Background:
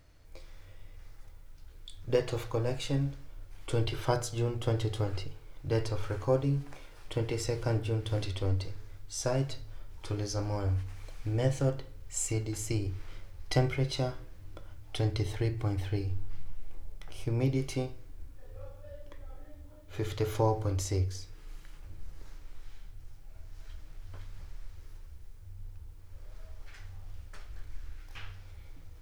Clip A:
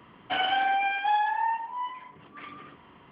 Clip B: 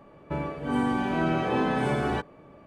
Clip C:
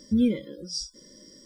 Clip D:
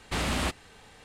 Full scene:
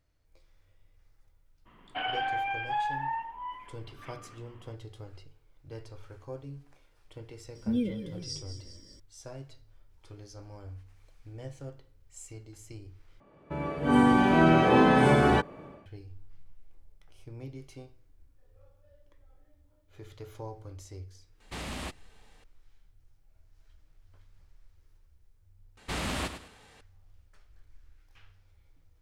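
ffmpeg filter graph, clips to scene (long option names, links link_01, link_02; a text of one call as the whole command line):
ffmpeg -i bed.wav -i cue0.wav -i cue1.wav -i cue2.wav -i cue3.wav -filter_complex "[4:a]asplit=2[link_01][link_02];[0:a]volume=-14dB[link_03];[3:a]asplit=8[link_04][link_05][link_06][link_07][link_08][link_09][link_10][link_11];[link_05]adelay=195,afreqshift=-32,volume=-10.5dB[link_12];[link_06]adelay=390,afreqshift=-64,volume=-15.1dB[link_13];[link_07]adelay=585,afreqshift=-96,volume=-19.7dB[link_14];[link_08]adelay=780,afreqshift=-128,volume=-24.2dB[link_15];[link_09]adelay=975,afreqshift=-160,volume=-28.8dB[link_16];[link_10]adelay=1170,afreqshift=-192,volume=-33.4dB[link_17];[link_11]adelay=1365,afreqshift=-224,volume=-38dB[link_18];[link_04][link_12][link_13][link_14][link_15][link_16][link_17][link_18]amix=inputs=8:normalize=0[link_19];[2:a]dynaudnorm=framelen=350:gausssize=3:maxgain=15.5dB[link_20];[link_01]equalizer=frequency=1400:width=4.8:gain=-3[link_21];[link_02]aecho=1:1:102|204|306:0.316|0.0949|0.0285[link_22];[link_03]asplit=3[link_23][link_24][link_25];[link_23]atrim=end=13.204[link_26];[link_20]atrim=end=2.66,asetpts=PTS-STARTPTS,volume=-8dB[link_27];[link_24]atrim=start=15.856:end=25.774[link_28];[link_22]atrim=end=1.04,asetpts=PTS-STARTPTS,volume=-4dB[link_29];[link_25]atrim=start=26.806[link_30];[1:a]atrim=end=3.11,asetpts=PTS-STARTPTS,volume=-6dB,afade=type=in:duration=0.02,afade=type=out:start_time=3.09:duration=0.02,adelay=1650[link_31];[link_19]atrim=end=1.45,asetpts=PTS-STARTPTS,volume=-7dB,afade=type=in:duration=0.004:curve=hsin,afade=type=out:start_time=1.446:duration=0.004:curve=hsin,adelay=7550[link_32];[link_21]atrim=end=1.04,asetpts=PTS-STARTPTS,volume=-9dB,afade=type=in:duration=0.004:curve=hsin,afade=type=out:start_time=1.036:duration=0.004:curve=hsin,adelay=21400[link_33];[link_26][link_27]acrossfade=duration=0.004:curve1=hsin:curve2=hsin[link_34];[link_34][link_28]acrossfade=duration=0.004:curve1=hsin:curve2=hsin[link_35];[link_35][link_29]acrossfade=duration=0.004:curve1=hsin:curve2=hsin[link_36];[link_36][link_30]acrossfade=duration=0.004:curve1=hsin:curve2=hsin[link_37];[link_37][link_31][link_32][link_33]amix=inputs=4:normalize=0" out.wav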